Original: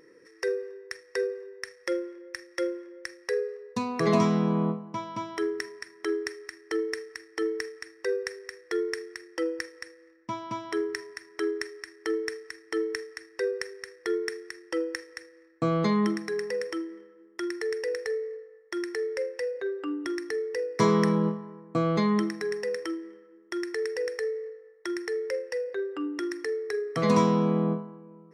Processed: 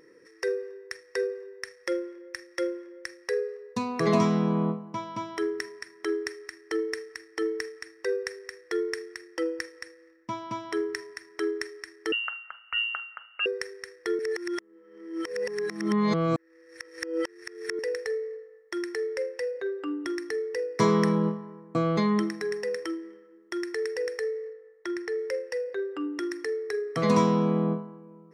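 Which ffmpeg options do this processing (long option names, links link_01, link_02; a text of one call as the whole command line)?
ffmpeg -i in.wav -filter_complex "[0:a]asettb=1/sr,asplit=3[link_01][link_02][link_03];[link_01]atrim=end=12.124[link_04];[link_02]atrim=start=12.12:end=13.46,asetpts=PTS-STARTPTS,afade=type=in:duration=0.004:curve=qsin,afade=type=out:start_time=1.336:duration=0.004:curve=qsin,lowpass=frequency=2700:width_type=q:width=0.5098,lowpass=frequency=2700:width_type=q:width=0.6013,lowpass=frequency=2700:width_type=q:width=0.9,lowpass=frequency=2700:width_type=q:width=2.563,afreqshift=-3200[link_05];[link_03]atrim=start=13.456[link_06];[link_04][link_05]acrossfade=duration=0.004:curve1=hsin:curve2=qsin[link_07];[link_07][link_06]acrossfade=duration=0.004:curve1=qsin:curve2=hsin,asettb=1/sr,asplit=3[link_08][link_09][link_10];[link_08]atrim=end=24.534[link_11];[link_09]atrim=start=24.53:end=25.19,asetpts=PTS-STARTPTS,afade=type=in:duration=0.004:curve=qsin,afade=type=out:start_time=0.656:duration=0.004:curve=qsin,lowpass=frequency=3800:poles=1[link_12];[link_10]atrim=start=25.186[link_13];[link_11][link_12]acrossfade=duration=0.004:curve1=hsin:curve2=qsin[link_14];[link_14][link_13]acrossfade=duration=0.004:curve1=qsin:curve2=hsin,asplit=3[link_15][link_16][link_17];[link_15]atrim=end=14.192[link_18];[link_16]atrim=start=14.188:end=17.792,asetpts=PTS-STARTPTS,areverse[link_19];[link_17]atrim=start=17.788[link_20];[link_18][link_19]acrossfade=duration=0.004:curve1=hsin:curve2=hsin[link_21];[link_21][link_20]acrossfade=duration=0.004:curve1=hsin:curve2=hsin" out.wav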